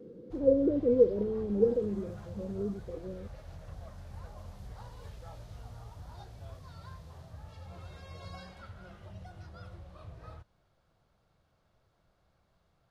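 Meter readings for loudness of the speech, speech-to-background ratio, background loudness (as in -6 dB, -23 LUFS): -28.5 LUFS, 20.0 dB, -48.5 LUFS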